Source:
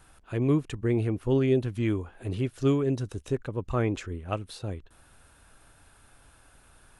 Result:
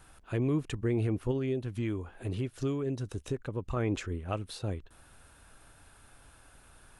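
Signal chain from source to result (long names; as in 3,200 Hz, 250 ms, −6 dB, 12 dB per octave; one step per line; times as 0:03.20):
0:01.31–0:03.77: downward compressor 3 to 1, threshold −31 dBFS, peak gain reduction 9.5 dB
brickwall limiter −21.5 dBFS, peak gain reduction 7.5 dB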